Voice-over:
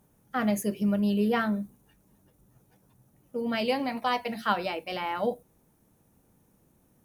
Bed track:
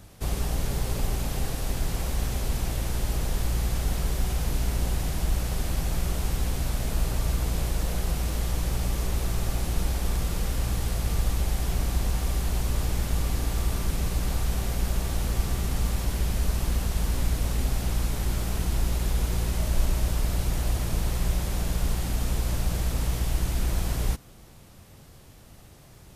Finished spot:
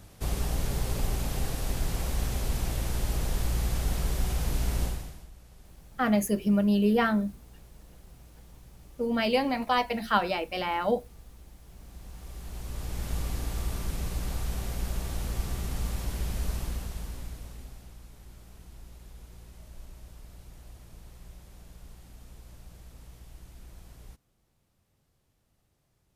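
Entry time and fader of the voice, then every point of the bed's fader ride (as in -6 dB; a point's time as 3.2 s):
5.65 s, +2.0 dB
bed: 4.84 s -2 dB
5.31 s -25 dB
11.64 s -25 dB
13.11 s -5.5 dB
16.54 s -5.5 dB
17.98 s -22.5 dB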